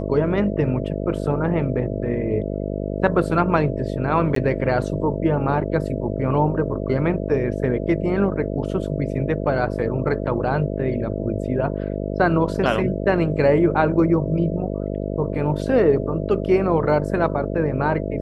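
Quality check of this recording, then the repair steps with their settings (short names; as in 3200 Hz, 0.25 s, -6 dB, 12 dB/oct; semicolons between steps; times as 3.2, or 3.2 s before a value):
buzz 50 Hz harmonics 13 -26 dBFS
4.35–4.36 gap 13 ms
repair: de-hum 50 Hz, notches 13; interpolate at 4.35, 13 ms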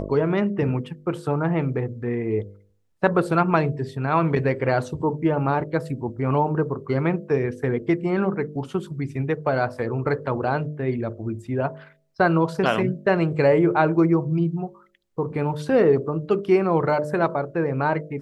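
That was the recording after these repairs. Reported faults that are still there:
none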